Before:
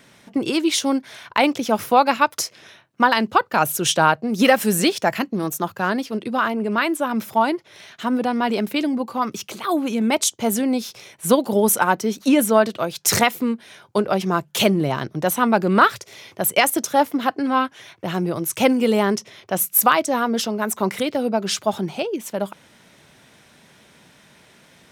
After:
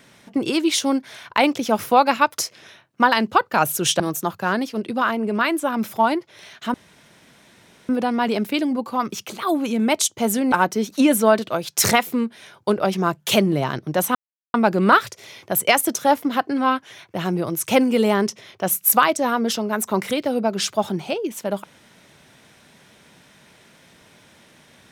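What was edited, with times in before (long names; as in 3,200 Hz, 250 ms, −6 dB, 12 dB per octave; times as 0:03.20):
0:04.00–0:05.37: remove
0:08.11: splice in room tone 1.15 s
0:10.74–0:11.80: remove
0:15.43: splice in silence 0.39 s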